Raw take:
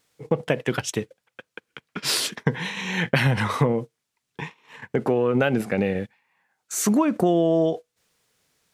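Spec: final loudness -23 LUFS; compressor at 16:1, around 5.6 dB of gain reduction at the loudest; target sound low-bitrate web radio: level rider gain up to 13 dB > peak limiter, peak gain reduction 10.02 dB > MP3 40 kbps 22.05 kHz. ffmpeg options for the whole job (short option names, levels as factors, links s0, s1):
-af "acompressor=threshold=0.0891:ratio=16,dynaudnorm=m=4.47,alimiter=limit=0.133:level=0:latency=1,volume=2.24" -ar 22050 -c:a libmp3lame -b:a 40k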